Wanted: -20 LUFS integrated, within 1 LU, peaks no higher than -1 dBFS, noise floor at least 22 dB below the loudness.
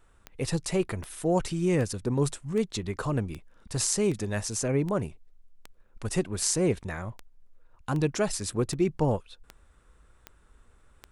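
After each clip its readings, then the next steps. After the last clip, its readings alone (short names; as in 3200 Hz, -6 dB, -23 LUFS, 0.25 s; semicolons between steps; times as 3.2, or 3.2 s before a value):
clicks 15; loudness -29.0 LUFS; peak -9.0 dBFS; loudness target -20.0 LUFS
-> de-click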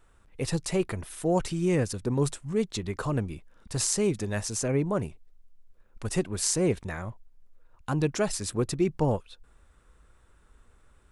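clicks 0; loudness -29.0 LUFS; peak -9.0 dBFS; loudness target -20.0 LUFS
-> gain +9 dB; limiter -1 dBFS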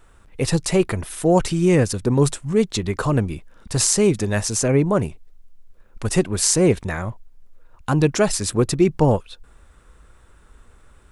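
loudness -20.0 LUFS; peak -1.0 dBFS; noise floor -52 dBFS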